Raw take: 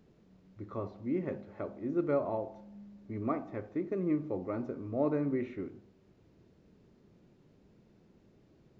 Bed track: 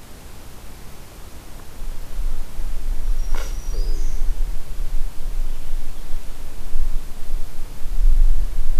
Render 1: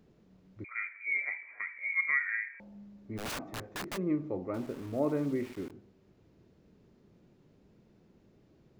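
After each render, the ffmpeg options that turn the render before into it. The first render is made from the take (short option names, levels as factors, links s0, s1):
-filter_complex "[0:a]asettb=1/sr,asplit=3[s0][s1][s2];[s0]atrim=end=0.644[s3];[s1]atrim=start=0.64:end=2.6,asetpts=PTS-STARTPTS,afade=t=in:d=0.004:c=qsin,afade=t=out:st=1.956:d=0.004:c=qsin,lowpass=f=2100:t=q:w=0.5098,lowpass=f=2100:t=q:w=0.6013,lowpass=f=2100:t=q:w=0.9,lowpass=f=2100:t=q:w=2.563,afreqshift=-2500[s4];[s2]atrim=start=2.596[s5];[s3][s4]acrossfade=d=0.004:c1=hsin:c2=qsin[s6];[s6][s5]acrossfade=d=0.004:c1=qsin:c2=hsin,asplit=3[s7][s8][s9];[s7]afade=t=out:st=3.17:d=0.02[s10];[s8]aeval=exprs='(mod(42.2*val(0)+1,2)-1)/42.2':c=same,afade=t=in:st=3.17:d=0.02,afade=t=out:st=3.96:d=0.02[s11];[s9]afade=t=in:st=3.96:d=0.02[s12];[s10][s11][s12]amix=inputs=3:normalize=0,asettb=1/sr,asplit=3[s13][s14][s15];[s13]atrim=end=4.544[s16];[s14]atrim=start=4.54:end=5.71,asetpts=PTS-STARTPTS,afade=t=in:d=0.004:c=qsin,afade=t=out:st=1.166:d=0.004:c=qsin,aeval=exprs='val(0)*gte(abs(val(0)),0.00473)':c=same[s17];[s15]atrim=start=5.706[s18];[s16][s17]acrossfade=d=0.004:c1=hsin:c2=qsin[s19];[s19][s18]acrossfade=d=0.004:c1=qsin:c2=hsin"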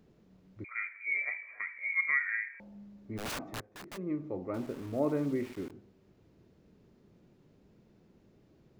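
-filter_complex "[0:a]asettb=1/sr,asplit=3[s0][s1][s2];[s0]atrim=end=1.134[s3];[s1]atrim=start=1.13:end=1.57,asetpts=PTS-STARTPTS,afade=t=in:d=0.004:c=qsin,afade=t=out:st=0.436:d=0.004:c=qsin,aecho=1:1:1.7:0.44,atrim=end_sample=19404[s4];[s2]atrim=start=1.566[s5];[s3][s4]acrossfade=d=0.004:c1=hsin:c2=qsin[s6];[s6][s5]acrossfade=d=0.004:c1=qsin:c2=hsin,asplit=2[s7][s8];[s7]atrim=end=3.61,asetpts=PTS-STARTPTS,afade=t=out:st=3.606:d=0.004:c=hsin:silence=0.199526[s9];[s8]atrim=start=3.61,asetpts=PTS-STARTPTS,afade=t=in:d=0.98:silence=0.199526[s10];[s9][s10]concat=n=2:v=0:a=1"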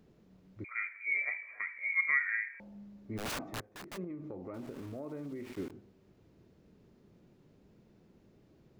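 -filter_complex "[0:a]asettb=1/sr,asplit=3[s0][s1][s2];[s0]atrim=end=4.044[s3];[s1]atrim=start=4.04:end=5.52,asetpts=PTS-STARTPTS,afade=t=in:d=0.004:c=qsin,afade=t=out:st=1.476:d=0.004:c=qsin,acompressor=threshold=0.0112:ratio=6:attack=3.2:release=140:knee=1:detection=peak[s4];[s2]atrim=start=5.516[s5];[s3][s4]acrossfade=d=0.004:c1=hsin:c2=qsin[s6];[s6][s5]acrossfade=d=0.004:c1=qsin:c2=hsin"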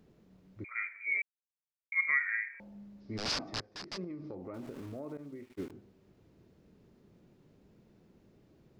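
-filter_complex "[0:a]asettb=1/sr,asplit=3[s0][s1][s2];[s0]atrim=end=3.004[s3];[s1]atrim=start=3:end=4.35,asetpts=PTS-STARTPTS,afade=t=in:d=0.004:c=qsin,afade=t=out:st=1.346:d=0.004:c=qsin,lowpass=f=5000:t=q:w=6.1[s4];[s2]atrim=start=4.346[s5];[s3][s4]acrossfade=d=0.004:c1=hsin:c2=qsin[s6];[s6][s5]acrossfade=d=0.004:c1=qsin:c2=hsin,asettb=1/sr,asplit=3[s7][s8][s9];[s7]atrim=end=5.174[s10];[s8]atrim=start=5.17:end=5.7,asetpts=PTS-STARTPTS,afade=t=in:d=0.004:c=qsin,afade=t=out:st=0.526:d=0.004:c=qsin,agate=range=0.0224:threshold=0.0126:ratio=3:release=100:detection=peak[s11];[s9]atrim=start=5.696[s12];[s10][s11]acrossfade=d=0.004:c1=hsin:c2=qsin[s13];[s13][s12]acrossfade=d=0.004:c1=qsin:c2=hsin,asplit=3[s14][s15][s16];[s14]atrim=end=1.22,asetpts=PTS-STARTPTS,afade=t=out:st=1.216:d=0.004:c=hsin[s17];[s15]atrim=start=1.22:end=1.92,asetpts=PTS-STARTPTS,volume=0[s18];[s16]atrim=start=1.92,asetpts=PTS-STARTPTS,afade=t=in:d=0.004:c=hsin[s19];[s17][s18][s19]concat=n=3:v=0:a=1"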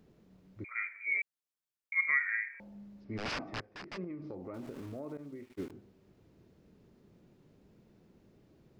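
-filter_complex "[0:a]asettb=1/sr,asplit=3[s0][s1][s2];[s0]atrim=end=3.044[s3];[s1]atrim=start=3.04:end=4.22,asetpts=PTS-STARTPTS,afade=t=in:d=0.004:c=qsin,afade=t=out:st=1.176:d=0.004:c=qsin,highshelf=f=3300:t=q:w=1.5:g=-8.5[s4];[s2]atrim=start=4.216[s5];[s3][s4]acrossfade=d=0.004:c1=hsin:c2=qsin[s6];[s6][s5]acrossfade=d=0.004:c1=qsin:c2=hsin"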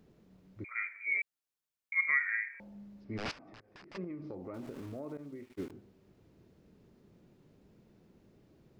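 -filter_complex "[0:a]asettb=1/sr,asplit=3[s0][s1][s2];[s0]atrim=end=3.314[s3];[s1]atrim=start=3.31:end=3.95,asetpts=PTS-STARTPTS,afade=t=in:d=0.004:c=qsin,afade=t=out:st=0.636:d=0.004:c=qsin,acompressor=threshold=0.00282:ratio=10:attack=3.2:release=140:knee=1:detection=peak[s4];[s2]atrim=start=3.946[s5];[s3][s4]acrossfade=d=0.004:c1=hsin:c2=qsin[s6];[s6][s5]acrossfade=d=0.004:c1=qsin:c2=hsin"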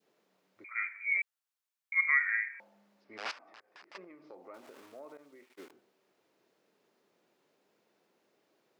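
-af "highpass=630,adynamicequalizer=threshold=0.00562:dfrequency=1200:dqfactor=0.78:tfrequency=1200:tqfactor=0.78:attack=5:release=100:ratio=0.375:range=2:mode=boostabove:tftype=bell"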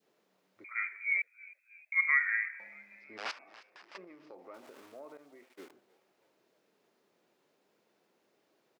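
-filter_complex "[0:a]asplit=5[s0][s1][s2][s3][s4];[s1]adelay=315,afreqshift=78,volume=0.0794[s5];[s2]adelay=630,afreqshift=156,volume=0.0437[s6];[s3]adelay=945,afreqshift=234,volume=0.024[s7];[s4]adelay=1260,afreqshift=312,volume=0.0132[s8];[s0][s5][s6][s7][s8]amix=inputs=5:normalize=0"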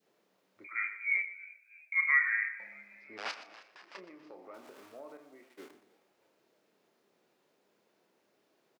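-filter_complex "[0:a]asplit=2[s0][s1];[s1]adelay=30,volume=0.316[s2];[s0][s2]amix=inputs=2:normalize=0,aecho=1:1:121|242|363:0.2|0.0638|0.0204"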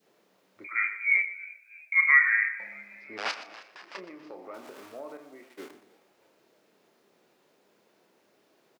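-af "volume=2.24"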